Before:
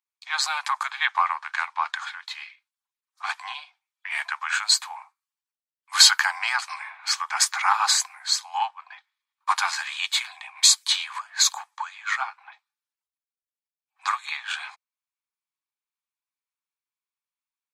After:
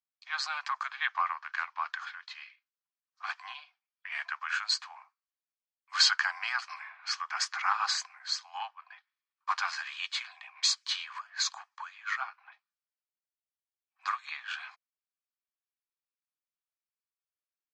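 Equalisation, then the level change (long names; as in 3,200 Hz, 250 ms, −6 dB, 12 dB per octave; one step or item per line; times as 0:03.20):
loudspeaker in its box 500–5,400 Hz, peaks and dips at 870 Hz −9 dB, 2,200 Hz −4 dB, 3,700 Hz −8 dB
−5.0 dB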